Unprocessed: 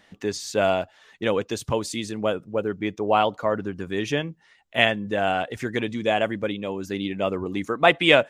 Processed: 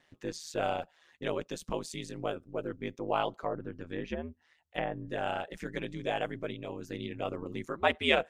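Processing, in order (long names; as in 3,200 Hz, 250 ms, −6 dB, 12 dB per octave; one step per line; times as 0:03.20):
0:03.33–0:05.07: treble cut that deepens with the level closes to 1,000 Hz, closed at −19.5 dBFS
ring modulation 79 Hz
level −7.5 dB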